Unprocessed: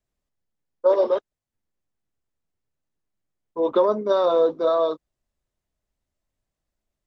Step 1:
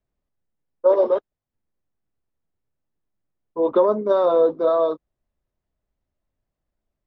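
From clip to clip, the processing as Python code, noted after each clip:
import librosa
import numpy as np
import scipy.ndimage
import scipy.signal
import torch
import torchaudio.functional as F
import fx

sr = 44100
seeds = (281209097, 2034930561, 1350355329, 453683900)

y = fx.lowpass(x, sr, hz=1400.0, slope=6)
y = F.gain(torch.from_numpy(y), 2.5).numpy()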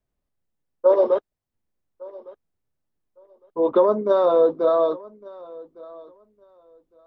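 y = fx.echo_feedback(x, sr, ms=1158, feedback_pct=19, wet_db=-22.0)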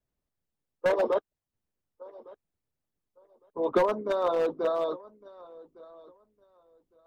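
y = np.clip(x, -10.0 ** (-11.5 / 20.0), 10.0 ** (-11.5 / 20.0))
y = fx.hpss(y, sr, part='harmonic', gain_db=-10)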